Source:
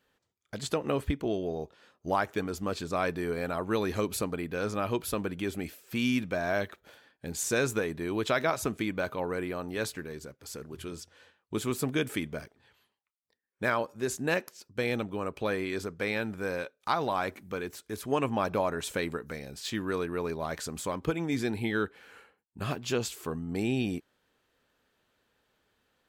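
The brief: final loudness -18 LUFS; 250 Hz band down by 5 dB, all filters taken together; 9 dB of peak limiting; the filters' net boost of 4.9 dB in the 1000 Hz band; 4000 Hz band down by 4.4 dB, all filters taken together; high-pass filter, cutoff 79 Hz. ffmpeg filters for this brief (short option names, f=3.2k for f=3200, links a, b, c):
-af "highpass=79,equalizer=f=250:t=o:g=-7,equalizer=f=1k:t=o:g=7,equalizer=f=4k:t=o:g=-6,volume=16dB,alimiter=limit=-2.5dB:level=0:latency=1"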